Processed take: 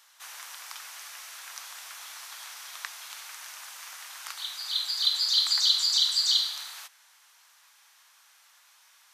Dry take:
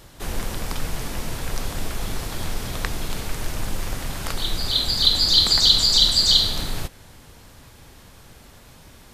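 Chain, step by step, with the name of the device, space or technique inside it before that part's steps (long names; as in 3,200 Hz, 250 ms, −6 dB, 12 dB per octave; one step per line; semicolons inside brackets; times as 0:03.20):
headphones lying on a table (high-pass filter 1,000 Hz 24 dB per octave; parametric band 6,000 Hz +4.5 dB 0.24 octaves)
0:00.96–0:01.41: notch filter 940 Hz, Q 9.1
level −7.5 dB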